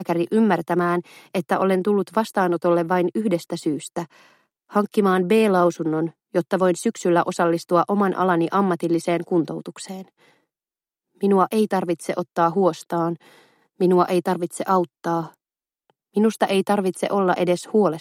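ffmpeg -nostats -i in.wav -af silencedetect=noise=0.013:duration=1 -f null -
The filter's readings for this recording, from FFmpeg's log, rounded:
silence_start: 10.03
silence_end: 11.21 | silence_duration: 1.18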